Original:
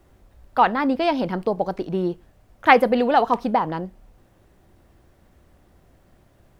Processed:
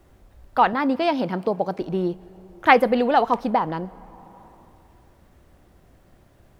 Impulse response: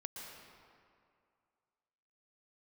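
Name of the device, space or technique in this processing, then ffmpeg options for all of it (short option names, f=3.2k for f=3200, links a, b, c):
compressed reverb return: -filter_complex "[0:a]asplit=2[a][b];[1:a]atrim=start_sample=2205[c];[b][c]afir=irnorm=-1:irlink=0,acompressor=threshold=-35dB:ratio=6,volume=-6dB[d];[a][d]amix=inputs=2:normalize=0,asettb=1/sr,asplit=3[e][f][g];[e]atrim=end=0.734[h];[f]atrim=start=0.73:end=1.81,asetpts=PTS-STARTPTS,afade=t=in:d=0.004:c=qsin,afade=t=out:st=1.076:d=0.004:c=qsin,highpass=f=84:w=0.5412,highpass=f=84:w=1.3066[i];[g]atrim=start=1.806[j];[h][i]acrossfade=d=0.004:c1=hsin:c2=qsin[k];[k][j]acrossfade=d=0.004:c1=qsin:c2=hsin,volume=-1dB"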